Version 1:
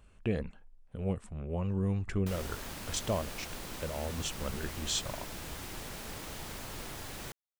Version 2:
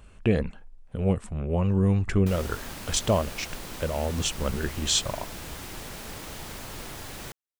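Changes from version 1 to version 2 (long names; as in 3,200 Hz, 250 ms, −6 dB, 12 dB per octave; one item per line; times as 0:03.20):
speech +9.0 dB
background +3.5 dB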